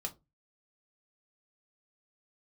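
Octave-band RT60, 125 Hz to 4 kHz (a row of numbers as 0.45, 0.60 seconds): 0.40, 0.30, 0.30, 0.20, 0.15, 0.15 seconds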